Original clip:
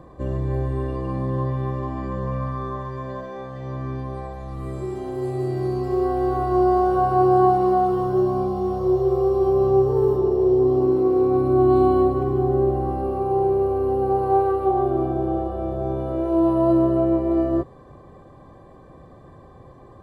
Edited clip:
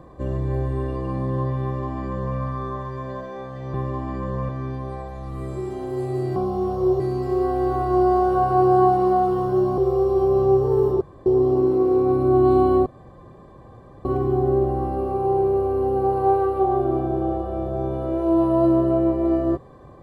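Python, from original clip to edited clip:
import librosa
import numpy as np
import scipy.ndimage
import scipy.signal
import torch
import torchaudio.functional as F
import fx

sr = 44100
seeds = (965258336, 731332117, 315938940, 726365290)

y = fx.edit(x, sr, fx.duplicate(start_s=1.63, length_s=0.75, to_s=3.74),
    fx.move(start_s=8.39, length_s=0.64, to_s=5.61),
    fx.room_tone_fill(start_s=10.26, length_s=0.25),
    fx.insert_room_tone(at_s=12.11, length_s=1.19), tone=tone)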